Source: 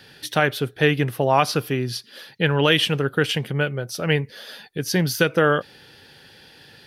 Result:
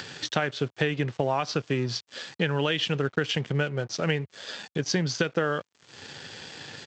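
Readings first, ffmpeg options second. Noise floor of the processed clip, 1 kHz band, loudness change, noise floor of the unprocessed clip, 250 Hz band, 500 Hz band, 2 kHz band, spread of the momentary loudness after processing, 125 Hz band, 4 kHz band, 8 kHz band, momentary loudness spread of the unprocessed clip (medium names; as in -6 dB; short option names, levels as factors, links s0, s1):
-69 dBFS, -8.0 dB, -6.5 dB, -50 dBFS, -5.5 dB, -6.5 dB, -7.0 dB, 14 LU, -5.5 dB, -6.0 dB, -4.5 dB, 10 LU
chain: -af "acompressor=mode=upward:threshold=0.0562:ratio=2.5,aresample=16000,aeval=exprs='sgn(val(0))*max(abs(val(0))-0.00944,0)':c=same,aresample=44100,highpass=f=79:w=0.5412,highpass=f=79:w=1.3066,acompressor=threshold=0.0891:ratio=12"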